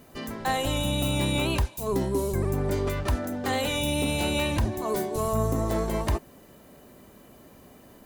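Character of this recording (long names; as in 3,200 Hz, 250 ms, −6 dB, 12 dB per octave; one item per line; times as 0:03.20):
background noise floor −52 dBFS
spectral slope −5.0 dB per octave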